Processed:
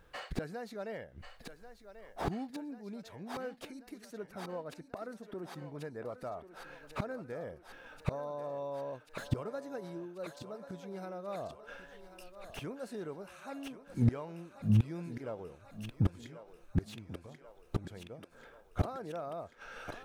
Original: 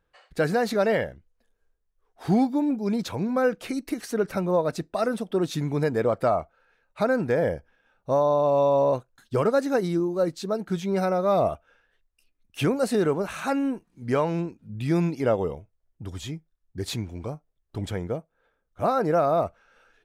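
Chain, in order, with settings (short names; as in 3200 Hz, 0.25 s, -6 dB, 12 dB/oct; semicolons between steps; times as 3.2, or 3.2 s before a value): flipped gate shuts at -28 dBFS, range -31 dB; 4.32–6.09 resonant high shelf 2300 Hz -6 dB, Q 1.5; on a send: thinning echo 1.088 s, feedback 69%, high-pass 310 Hz, level -11 dB; on the sum: slew limiter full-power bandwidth 5 Hz; gain +12 dB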